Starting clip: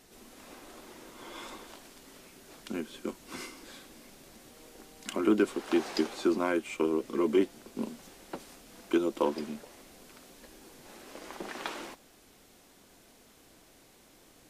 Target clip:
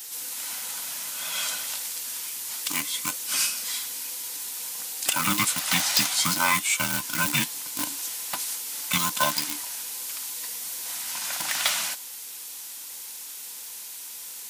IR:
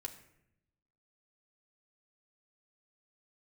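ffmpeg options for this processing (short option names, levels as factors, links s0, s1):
-filter_complex "[0:a]afftfilt=real='real(if(between(b,1,1008),(2*floor((b-1)/24)+1)*24-b,b),0)':imag='imag(if(between(b,1,1008),(2*floor((b-1)/24)+1)*24-b,b),0)*if(between(b,1,1008),-1,1)':win_size=2048:overlap=0.75,asplit=2[s0][s1];[s1]acrusher=bits=4:mix=0:aa=0.000001,volume=0.251[s2];[s0][s2]amix=inputs=2:normalize=0,aderivative,aeval=exprs='0.106*sin(PI/2*4.47*val(0)/0.106)':c=same,volume=2.24"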